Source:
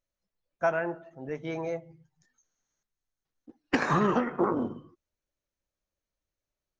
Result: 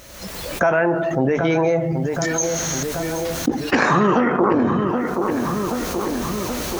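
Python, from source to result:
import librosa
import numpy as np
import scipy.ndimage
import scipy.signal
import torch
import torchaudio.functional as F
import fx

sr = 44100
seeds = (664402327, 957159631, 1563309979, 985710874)

y = fx.recorder_agc(x, sr, target_db=-22.5, rise_db_per_s=41.0, max_gain_db=30)
y = scipy.signal.sosfilt(scipy.signal.butter(2, 42.0, 'highpass', fs=sr, output='sos'), y)
y = fx.hum_notches(y, sr, base_hz=50, count=3)
y = fx.echo_filtered(y, sr, ms=777, feedback_pct=42, hz=2100.0, wet_db=-15)
y = fx.env_flatten(y, sr, amount_pct=70)
y = y * librosa.db_to_amplitude(6.0)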